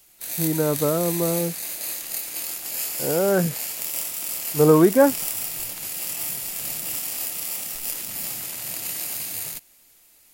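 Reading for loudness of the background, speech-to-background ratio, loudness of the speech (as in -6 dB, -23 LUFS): -27.0 LUFS, 6.0 dB, -21.0 LUFS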